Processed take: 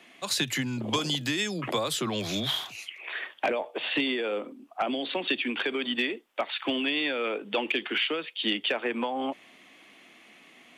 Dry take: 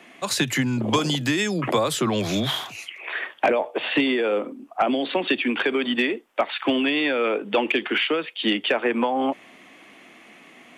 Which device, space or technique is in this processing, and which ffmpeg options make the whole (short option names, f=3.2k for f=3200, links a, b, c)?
presence and air boost: -af "equalizer=f=3.8k:t=o:w=1.3:g=6,highshelf=f=10k:g=6.5,volume=-8dB"